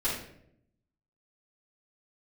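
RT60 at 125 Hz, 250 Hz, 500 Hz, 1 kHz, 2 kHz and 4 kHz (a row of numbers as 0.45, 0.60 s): 1.1, 1.0, 0.85, 0.60, 0.60, 0.45 s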